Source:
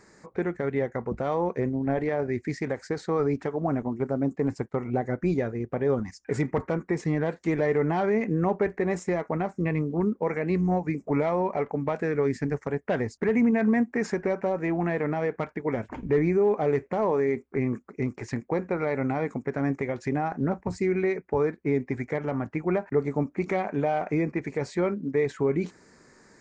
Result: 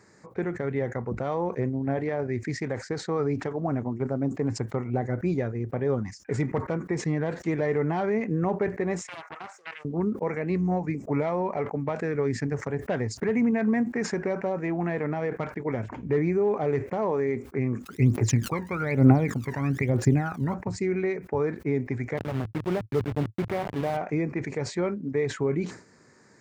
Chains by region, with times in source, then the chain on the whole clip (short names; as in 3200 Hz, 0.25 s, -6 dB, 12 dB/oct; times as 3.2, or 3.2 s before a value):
9.01–9.85 Bessel high-pass 1200 Hz, order 6 + Doppler distortion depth 0.35 ms
17.85–20.53 crackle 310/s -48 dBFS + phaser 1.1 Hz, delay 1.1 ms, feedback 80%
22.17–23.97 level-crossing sampler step -26.5 dBFS + tone controls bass +1 dB, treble -14 dB
whole clip: HPF 80 Hz; bell 110 Hz +7 dB 0.69 oct; sustainer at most 130 dB/s; gain -2 dB